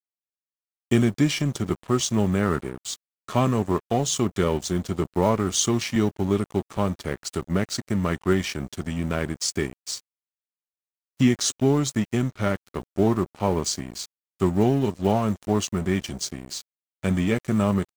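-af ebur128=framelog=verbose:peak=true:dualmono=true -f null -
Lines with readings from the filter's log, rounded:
Integrated loudness:
  I:         -21.7 LUFS
  Threshold: -31.9 LUFS
Loudness range:
  LRA:         3.2 LU
  Threshold: -42.3 LUFS
  LRA low:   -24.2 LUFS
  LRA high:  -21.1 LUFS
True peak:
  Peak:       -6.5 dBFS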